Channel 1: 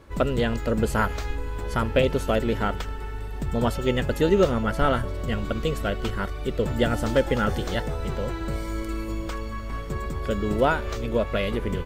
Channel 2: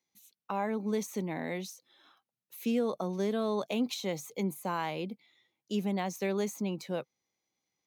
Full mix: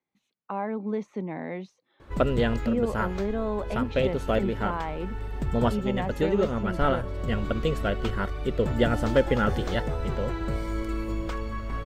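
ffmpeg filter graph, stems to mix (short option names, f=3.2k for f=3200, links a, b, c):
-filter_complex "[0:a]highshelf=f=5.1k:g=-9,adelay=2000,volume=0dB[a];[1:a]lowpass=1.9k,volume=2dB,asplit=2[b][c];[c]apad=whole_len=610805[d];[a][d]sidechaincompress=threshold=-30dB:ratio=8:attack=16:release=674[e];[e][b]amix=inputs=2:normalize=0"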